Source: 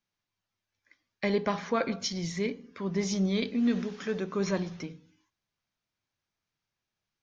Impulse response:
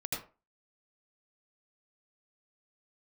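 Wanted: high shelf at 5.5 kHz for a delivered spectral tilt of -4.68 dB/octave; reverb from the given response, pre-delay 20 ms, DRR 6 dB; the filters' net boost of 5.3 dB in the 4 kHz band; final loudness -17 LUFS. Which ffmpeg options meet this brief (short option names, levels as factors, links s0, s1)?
-filter_complex "[0:a]equalizer=f=4000:t=o:g=5,highshelf=f=5500:g=4,asplit=2[s0][s1];[1:a]atrim=start_sample=2205,adelay=20[s2];[s1][s2]afir=irnorm=-1:irlink=0,volume=0.376[s3];[s0][s3]amix=inputs=2:normalize=0,volume=3.76"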